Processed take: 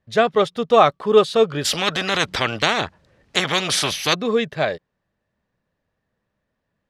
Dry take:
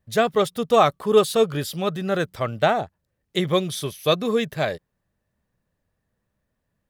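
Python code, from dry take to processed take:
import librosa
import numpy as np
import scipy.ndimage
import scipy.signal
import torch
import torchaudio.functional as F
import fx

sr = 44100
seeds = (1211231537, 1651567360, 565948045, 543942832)

y = scipy.signal.sosfilt(scipy.signal.butter(2, 4700.0, 'lowpass', fs=sr, output='sos'), x)
y = fx.low_shelf(y, sr, hz=150.0, db=-8.5)
y = fx.spectral_comp(y, sr, ratio=4.0, at=(1.64, 4.13), fade=0.02)
y = y * librosa.db_to_amplitude(3.5)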